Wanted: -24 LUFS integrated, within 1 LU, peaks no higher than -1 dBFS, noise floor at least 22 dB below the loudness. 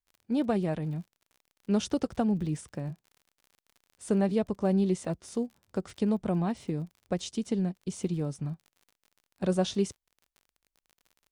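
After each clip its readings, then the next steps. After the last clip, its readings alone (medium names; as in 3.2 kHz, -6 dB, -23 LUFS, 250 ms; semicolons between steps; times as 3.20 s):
tick rate 45 per s; loudness -31.0 LUFS; peak level -15.5 dBFS; loudness target -24.0 LUFS
-> de-click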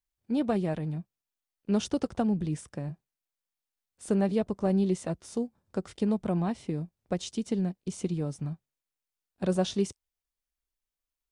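tick rate 0 per s; loudness -31.0 LUFS; peak level -15.5 dBFS; loudness target -24.0 LUFS
-> trim +7 dB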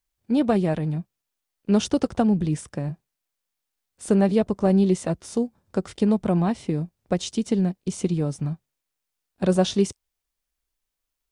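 loudness -24.0 LUFS; peak level -8.5 dBFS; noise floor -83 dBFS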